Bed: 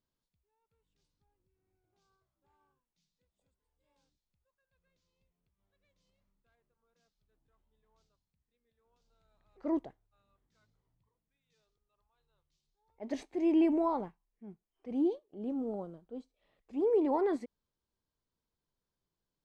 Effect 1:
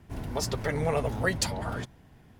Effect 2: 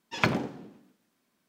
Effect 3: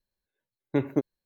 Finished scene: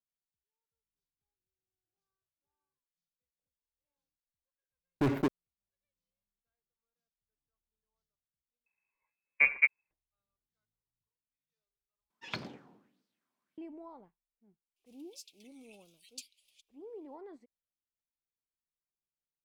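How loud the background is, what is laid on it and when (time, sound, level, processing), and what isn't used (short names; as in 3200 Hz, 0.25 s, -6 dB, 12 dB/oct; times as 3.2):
bed -19 dB
4.27 add 3 -11 dB + sample leveller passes 5
8.66 replace with 3 -0.5 dB + inverted band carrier 2600 Hz
12.1 replace with 2 -16.5 dB + LFO bell 1.6 Hz 890–4800 Hz +12 dB
14.76 add 1 -16 dB + steep high-pass 2400 Hz 96 dB/oct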